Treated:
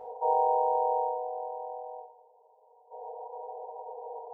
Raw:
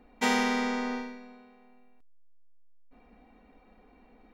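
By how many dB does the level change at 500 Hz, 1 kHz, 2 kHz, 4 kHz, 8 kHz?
+7.5 dB, +7.5 dB, below −40 dB, below −40 dB, below −35 dB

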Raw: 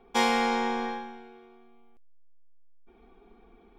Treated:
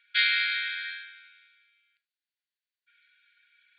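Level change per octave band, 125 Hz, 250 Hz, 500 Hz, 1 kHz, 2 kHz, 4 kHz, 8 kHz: can't be measured, below −40 dB, below −40 dB, −16.5 dB, +6.5 dB, +6.5 dB, below −35 dB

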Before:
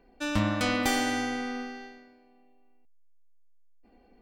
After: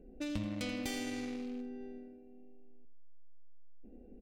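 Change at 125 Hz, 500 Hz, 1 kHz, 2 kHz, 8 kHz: −11.0, −10.0, −19.5, −15.5, −11.0 decibels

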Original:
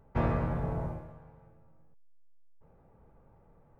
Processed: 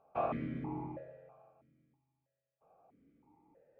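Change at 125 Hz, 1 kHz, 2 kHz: −13.0, −1.5, −8.5 decibels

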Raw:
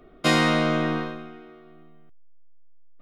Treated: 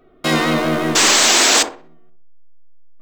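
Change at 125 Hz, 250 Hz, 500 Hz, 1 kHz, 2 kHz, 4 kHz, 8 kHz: +2.0, +4.5, +7.0, +8.5, +10.0, +15.5, +26.5 decibels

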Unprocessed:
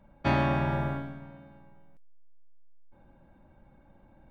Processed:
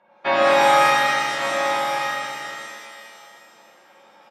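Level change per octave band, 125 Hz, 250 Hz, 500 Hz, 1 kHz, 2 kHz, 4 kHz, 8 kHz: −12.0 dB, −0.5 dB, +15.0 dB, +16.5 dB, +17.5 dB, +21.0 dB, can't be measured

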